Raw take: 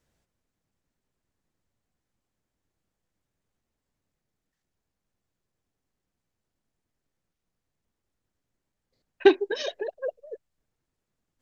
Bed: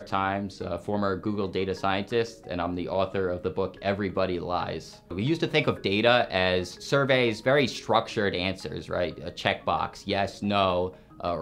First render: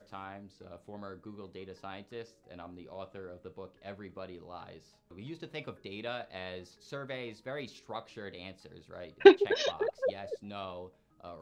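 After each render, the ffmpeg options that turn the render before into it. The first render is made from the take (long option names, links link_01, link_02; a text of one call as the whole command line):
ffmpeg -i in.wav -i bed.wav -filter_complex "[1:a]volume=-18dB[link_01];[0:a][link_01]amix=inputs=2:normalize=0" out.wav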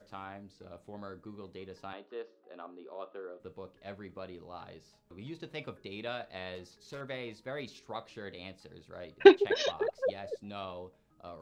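ffmpeg -i in.wav -filter_complex "[0:a]asettb=1/sr,asplit=3[link_01][link_02][link_03];[link_01]atrim=end=1.934[link_04];[link_02]atrim=start=1.93:end=3.4,asetpts=PTS-STARTPTS,afade=type=in:duration=0.004:curve=qsin,afade=type=out:start_time=1.466:duration=0.004:curve=qsin,highpass=frequency=270:width=0.5412,highpass=frequency=270:width=1.3066,equalizer=frequency=410:width_type=q:width=4:gain=5,equalizer=frequency=1200:width_type=q:width=4:gain=5,equalizer=frequency=2200:width_type=q:width=4:gain=-8,lowpass=frequency=3500:width=0.5412,lowpass=frequency=3500:width=1.3066[link_05];[link_03]atrim=start=3.396[link_06];[link_04][link_05]acrossfade=duration=0.004:curve1=hsin:curve2=qsin[link_07];[link_07][link_06]acrossfade=duration=0.004:curve1=qsin:curve2=hsin,asettb=1/sr,asplit=3[link_08][link_09][link_10];[link_08]atrim=end=6.554[link_11];[link_09]atrim=start=6.55:end=7.01,asetpts=PTS-STARTPTS,afade=type=in:duration=0.004:curve=qsin,afade=type=out:start_time=0.456:duration=0.004:curve=qsin,asoftclip=type=hard:threshold=-39dB[link_12];[link_10]atrim=start=7.006[link_13];[link_11][link_12]acrossfade=duration=0.004:curve1=hsin:curve2=qsin[link_14];[link_14][link_13]acrossfade=duration=0.004:curve1=qsin:curve2=hsin" out.wav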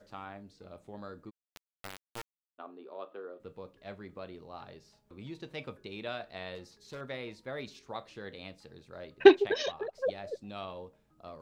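ffmpeg -i in.wav -filter_complex "[0:a]asplit=3[link_01][link_02][link_03];[link_01]afade=type=out:start_time=1.29:duration=0.02[link_04];[link_02]acrusher=bits=3:dc=4:mix=0:aa=0.000001,afade=type=in:start_time=1.29:duration=0.02,afade=type=out:start_time=2.58:duration=0.02[link_05];[link_03]afade=type=in:start_time=2.58:duration=0.02[link_06];[link_04][link_05][link_06]amix=inputs=3:normalize=0,asplit=2[link_07][link_08];[link_07]atrim=end=9.94,asetpts=PTS-STARTPTS,afade=type=out:start_time=9.46:duration=0.48:silence=0.421697[link_09];[link_08]atrim=start=9.94,asetpts=PTS-STARTPTS,afade=type=in:duration=0.004:curve=hsin:silence=0.421697[link_10];[link_09][link_10]concat=n=2:v=0:a=1" out.wav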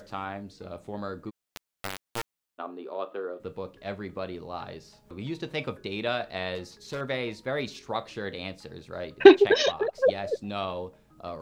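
ffmpeg -i in.wav -af "acompressor=mode=upward:threshold=-58dB:ratio=2.5,alimiter=level_in=9.5dB:limit=-1dB:release=50:level=0:latency=1" out.wav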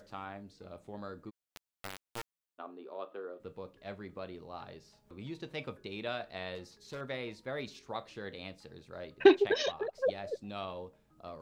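ffmpeg -i in.wav -af "volume=-8.5dB" out.wav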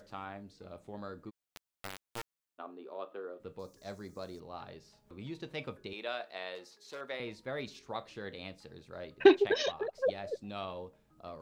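ffmpeg -i in.wav -filter_complex "[0:a]asettb=1/sr,asplit=3[link_01][link_02][link_03];[link_01]atrim=end=3.594[link_04];[link_02]atrim=start=3.59:end=4.4,asetpts=PTS-STARTPTS,afade=type=in:duration=0.004:curve=qsin,afade=type=out:start_time=0.806:duration=0.004:curve=qsin,highshelf=frequency=4200:width_type=q:width=3:gain=13[link_05];[link_03]atrim=start=4.396[link_06];[link_04][link_05]acrossfade=duration=0.004:curve1=hsin:curve2=qsin[link_07];[link_07][link_06]acrossfade=duration=0.004:curve1=qsin:curve2=hsin,asettb=1/sr,asplit=3[link_08][link_09][link_10];[link_08]atrim=end=5.934[link_11];[link_09]atrim=start=5.93:end=7.2,asetpts=PTS-STARTPTS,afade=type=in:duration=0.004:curve=qsin,afade=type=out:start_time=1.266:duration=0.004:curve=qsin,highpass=390[link_12];[link_10]atrim=start=7.196[link_13];[link_11][link_12]acrossfade=duration=0.004:curve1=hsin:curve2=qsin[link_14];[link_14][link_13]acrossfade=duration=0.004:curve1=qsin:curve2=hsin" out.wav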